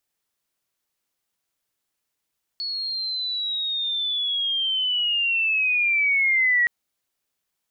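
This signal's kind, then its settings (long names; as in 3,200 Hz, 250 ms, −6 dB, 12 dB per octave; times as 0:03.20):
glide linear 4,400 Hz → 1,900 Hz −26 dBFS → −16 dBFS 4.07 s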